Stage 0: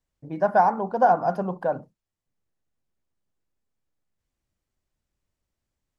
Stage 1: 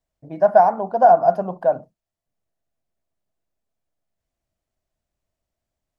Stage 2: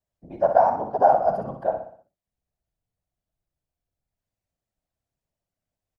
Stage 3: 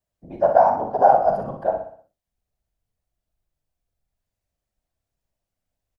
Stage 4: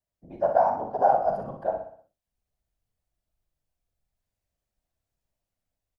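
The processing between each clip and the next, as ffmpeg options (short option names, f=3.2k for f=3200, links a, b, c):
-af "equalizer=f=660:w=4.4:g=12.5,volume=-1dB"
-filter_complex "[0:a]afftfilt=real='hypot(re,im)*cos(2*PI*random(0))':imag='hypot(re,im)*sin(2*PI*random(1))':win_size=512:overlap=0.75,asplit=2[a][b];[b]aecho=0:1:61|122|183|244|305:0.398|0.183|0.0842|0.0388|0.0178[c];[a][c]amix=inputs=2:normalize=0"
-filter_complex "[0:a]asubboost=boost=2:cutoff=74,asplit=2[a][b];[b]adelay=41,volume=-9dB[c];[a][c]amix=inputs=2:normalize=0,volume=2dB"
-af "dynaudnorm=f=270:g=5:m=4dB,volume=-6dB"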